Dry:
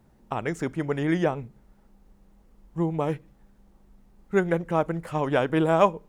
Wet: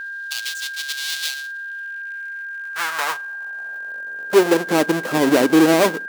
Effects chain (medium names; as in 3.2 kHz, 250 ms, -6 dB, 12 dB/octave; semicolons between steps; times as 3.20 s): square wave that keeps the level; in parallel at +2.5 dB: compression, threshold -31 dBFS, peak gain reduction 19 dB; on the sum: saturation -14 dBFS, distortion -14 dB; high-pass sweep 3.8 kHz -> 290 Hz, 1.49–4.80 s; whistle 1.6 kHz -29 dBFS; trim +1 dB